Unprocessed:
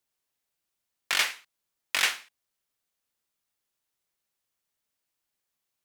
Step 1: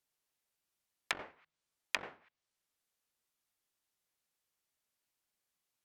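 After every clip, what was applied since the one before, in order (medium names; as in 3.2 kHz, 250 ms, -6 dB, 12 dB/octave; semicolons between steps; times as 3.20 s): de-hum 78.58 Hz, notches 2; low-pass that closes with the level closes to 510 Hz, closed at -26 dBFS; trim -2.5 dB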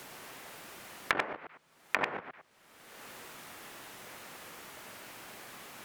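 chunks repeated in reverse 105 ms, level -6.5 dB; peak limiter -23.5 dBFS, peak gain reduction 10 dB; three bands compressed up and down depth 100%; trim +14.5 dB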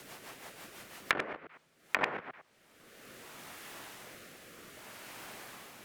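rotary cabinet horn 6 Hz, later 0.65 Hz, at 1.06 s; trim +1.5 dB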